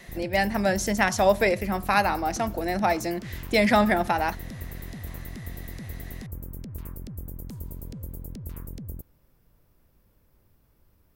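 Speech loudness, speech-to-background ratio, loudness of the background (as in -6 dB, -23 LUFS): -24.0 LUFS, 15.0 dB, -39.0 LUFS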